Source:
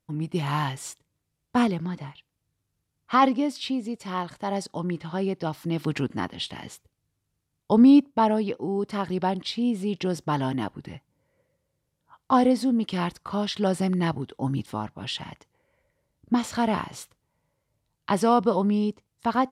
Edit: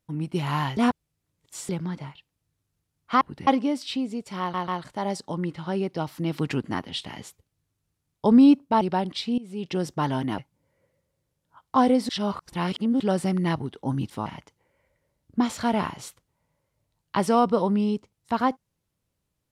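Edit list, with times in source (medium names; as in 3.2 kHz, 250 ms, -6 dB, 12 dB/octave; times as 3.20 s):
0.77–1.69 s: reverse
4.14 s: stutter 0.14 s, 3 plays
8.27–9.11 s: delete
9.68–10.07 s: fade in, from -20.5 dB
10.68–10.94 s: move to 3.21 s
12.65–13.56 s: reverse
14.82–15.20 s: delete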